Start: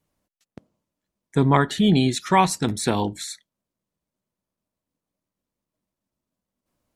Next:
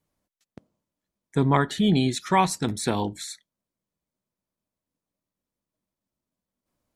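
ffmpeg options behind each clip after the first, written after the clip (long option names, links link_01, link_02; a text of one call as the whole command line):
ffmpeg -i in.wav -af "bandreject=frequency=2800:width=28,volume=-3dB" out.wav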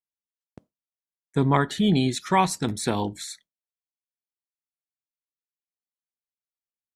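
ffmpeg -i in.wav -af "agate=range=-33dB:threshold=-47dB:ratio=3:detection=peak" out.wav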